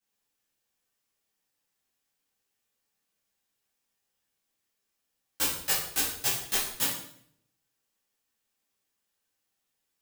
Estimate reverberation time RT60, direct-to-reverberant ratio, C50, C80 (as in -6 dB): 0.65 s, -10.5 dB, 2.5 dB, 7.0 dB